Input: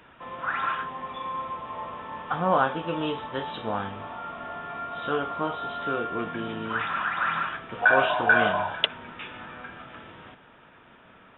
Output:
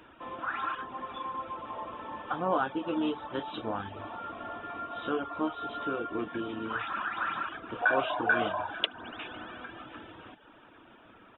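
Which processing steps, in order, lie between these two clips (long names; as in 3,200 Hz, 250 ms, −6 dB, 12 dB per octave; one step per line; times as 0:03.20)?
thirty-one-band graphic EQ 160 Hz −8 dB, 315 Hz +9 dB, 2,000 Hz −5 dB
spring reverb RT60 3.9 s, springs 59 ms, chirp 30 ms, DRR 13.5 dB
in parallel at −1 dB: downward compressor, threshold −33 dBFS, peak gain reduction 17 dB
on the sum: pitch-shifted copies added −5 semitones −18 dB
reverb reduction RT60 0.59 s
level −7 dB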